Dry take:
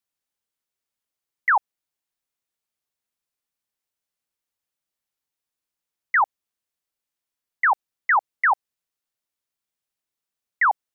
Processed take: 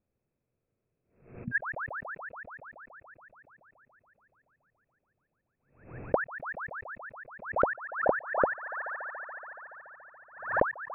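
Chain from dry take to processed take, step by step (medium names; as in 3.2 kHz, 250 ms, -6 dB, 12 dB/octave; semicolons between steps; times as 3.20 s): frequency inversion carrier 2.6 kHz; ten-band graphic EQ 125 Hz +12 dB, 250 Hz +5 dB, 500 Hz +9 dB, 1 kHz -7 dB, 2 kHz -10 dB; on a send: feedback echo behind a high-pass 142 ms, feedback 80%, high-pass 1.6 kHz, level -11 dB; on the sum: spectral replace 0.62–1.60 s, 240–1600 Hz before; compression 4:1, threshold -34 dBFS, peak gain reduction 16.5 dB; bass shelf 140 Hz +10 dB; swell ahead of each attack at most 110 dB/s; trim +7 dB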